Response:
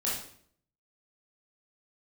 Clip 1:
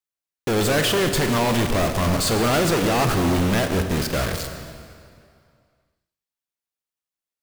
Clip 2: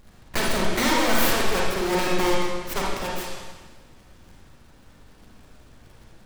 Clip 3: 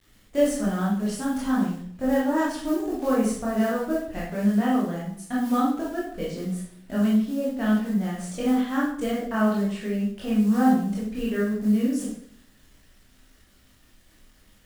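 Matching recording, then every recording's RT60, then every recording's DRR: 3; 2.3, 1.4, 0.60 s; 6.0, -3.5, -7.0 dB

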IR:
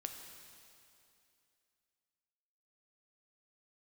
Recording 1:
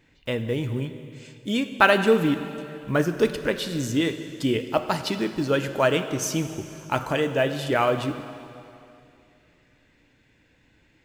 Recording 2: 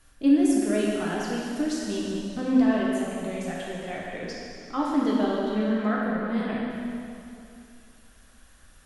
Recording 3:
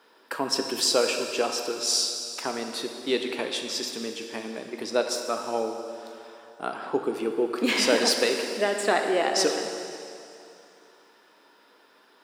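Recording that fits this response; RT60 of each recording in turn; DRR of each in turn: 3; 2.6, 2.6, 2.6 s; 8.5, -5.0, 4.0 dB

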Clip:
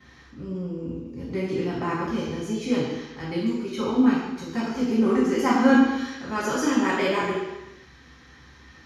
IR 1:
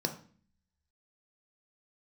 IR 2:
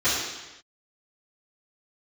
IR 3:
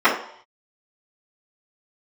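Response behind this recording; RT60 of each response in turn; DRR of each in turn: 2; 0.45 s, not exponential, 0.65 s; 4.5, -17.5, -14.0 dB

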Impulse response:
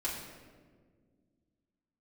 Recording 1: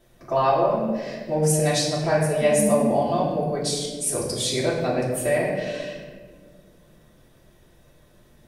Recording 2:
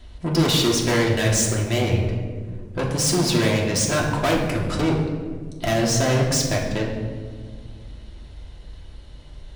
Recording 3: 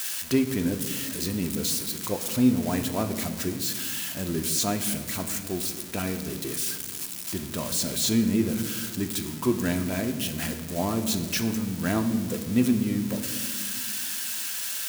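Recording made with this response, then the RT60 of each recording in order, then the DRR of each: 1; 1.7, 1.7, 1.8 s; -8.5, -3.0, 5.5 dB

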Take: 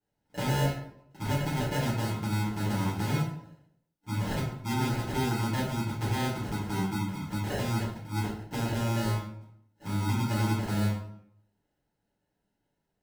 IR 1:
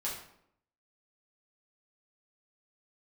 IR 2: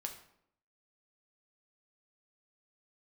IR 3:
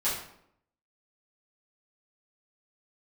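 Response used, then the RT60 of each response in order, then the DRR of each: 3; 0.70, 0.70, 0.70 s; -6.5, 3.0, -11.5 dB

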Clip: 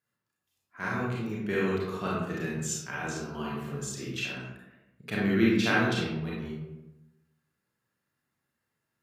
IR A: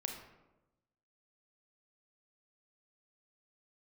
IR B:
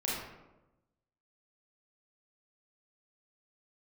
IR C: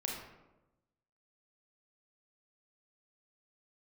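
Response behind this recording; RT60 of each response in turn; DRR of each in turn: B; 1.0, 1.0, 1.0 s; 3.0, -6.0, -1.5 dB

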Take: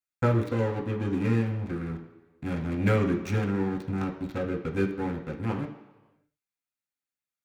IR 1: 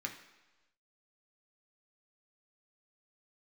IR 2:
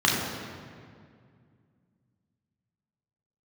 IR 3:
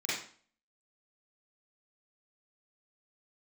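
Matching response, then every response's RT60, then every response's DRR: 1; 1.1, 2.1, 0.45 s; 1.5, -4.0, -10.5 dB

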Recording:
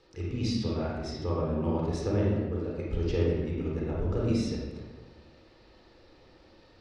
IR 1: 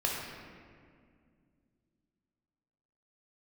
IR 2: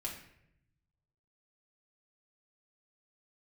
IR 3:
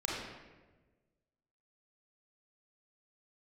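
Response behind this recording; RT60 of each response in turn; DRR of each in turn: 3; 2.1, 0.75, 1.3 s; -3.0, -3.5, -4.5 dB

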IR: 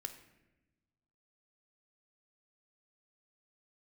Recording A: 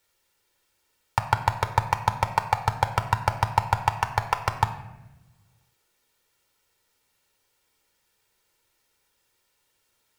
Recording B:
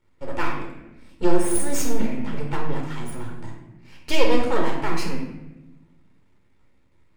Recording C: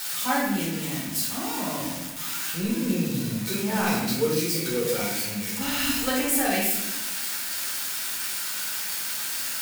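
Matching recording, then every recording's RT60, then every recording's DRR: A; 1.1, 1.0, 1.0 s; 8.0, -0.5, -5.5 dB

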